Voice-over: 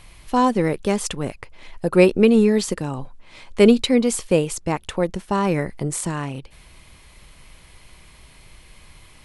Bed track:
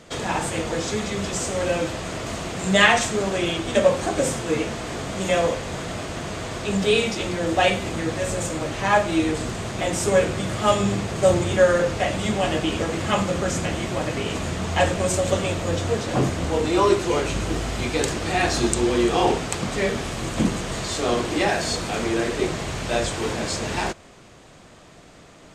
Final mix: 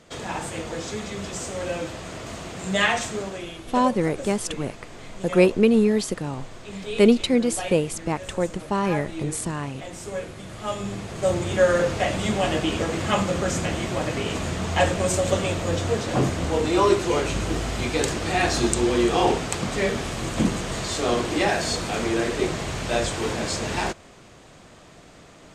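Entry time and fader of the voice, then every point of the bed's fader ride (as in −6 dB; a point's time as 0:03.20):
3.40 s, −3.0 dB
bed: 0:03.17 −5.5 dB
0:03.51 −13 dB
0:10.38 −13 dB
0:11.79 −0.5 dB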